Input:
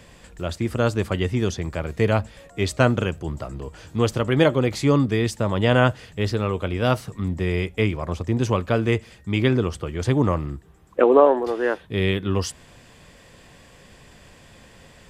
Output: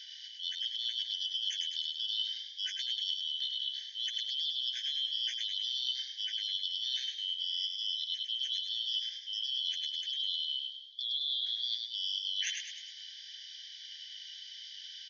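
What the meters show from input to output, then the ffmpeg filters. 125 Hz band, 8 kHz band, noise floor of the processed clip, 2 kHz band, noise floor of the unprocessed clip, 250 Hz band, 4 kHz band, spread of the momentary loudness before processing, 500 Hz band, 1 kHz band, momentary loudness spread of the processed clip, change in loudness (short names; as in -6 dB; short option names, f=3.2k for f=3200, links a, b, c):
under -40 dB, -8.0 dB, -49 dBFS, -20.5 dB, -50 dBFS, under -40 dB, +6.5 dB, 12 LU, under -40 dB, under -40 dB, 12 LU, -11.0 dB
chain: -filter_complex "[0:a]afftfilt=real='real(if(lt(b,272),68*(eq(floor(b/68),0)*2+eq(floor(b/68),1)*3+eq(floor(b/68),2)*0+eq(floor(b/68),3)*1)+mod(b,68),b),0)':imag='imag(if(lt(b,272),68*(eq(floor(b/68),0)*2+eq(floor(b/68),1)*3+eq(floor(b/68),2)*0+eq(floor(b/68),3)*1)+mod(b,68),b),0)':win_size=2048:overlap=0.75,alimiter=limit=-11dB:level=0:latency=1:release=11,afftfilt=real='re*between(b*sr/4096,1500,6700)':imag='im*between(b*sr/4096,1500,6700)':win_size=4096:overlap=0.75,areverse,acompressor=threshold=-34dB:ratio=8,areverse,asplit=7[a][b][c][d][e][f][g];[b]adelay=103,afreqshift=52,volume=-4.5dB[h];[c]adelay=206,afreqshift=104,volume=-10.9dB[i];[d]adelay=309,afreqshift=156,volume=-17.3dB[j];[e]adelay=412,afreqshift=208,volume=-23.6dB[k];[f]adelay=515,afreqshift=260,volume=-30dB[l];[g]adelay=618,afreqshift=312,volume=-36.4dB[m];[a][h][i][j][k][l][m]amix=inputs=7:normalize=0"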